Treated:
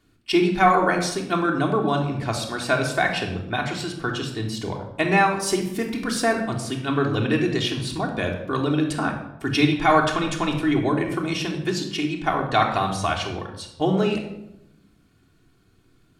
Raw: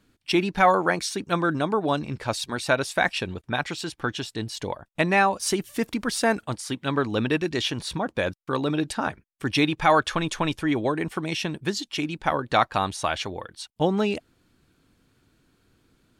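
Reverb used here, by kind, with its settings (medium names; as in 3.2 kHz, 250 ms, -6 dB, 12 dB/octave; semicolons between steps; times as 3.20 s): simulated room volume 2600 m³, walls furnished, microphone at 3.3 m; trim -1.5 dB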